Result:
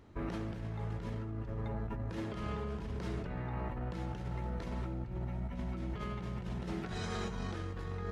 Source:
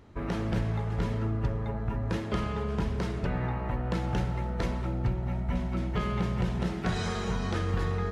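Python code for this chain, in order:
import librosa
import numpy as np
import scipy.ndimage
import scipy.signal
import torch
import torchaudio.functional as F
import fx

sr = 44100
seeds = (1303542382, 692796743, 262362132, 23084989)

y = fx.peak_eq(x, sr, hz=320.0, db=3.0, octaves=0.26)
y = fx.over_compress(y, sr, threshold_db=-32.0, ratio=-1.0)
y = y * librosa.db_to_amplitude(-6.5)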